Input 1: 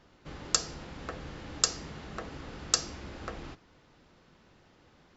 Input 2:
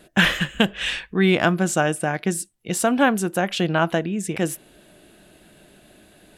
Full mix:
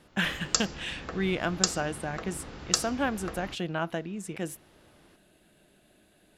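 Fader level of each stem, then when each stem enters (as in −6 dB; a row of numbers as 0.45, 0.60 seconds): +0.5, −11.0 decibels; 0.00, 0.00 seconds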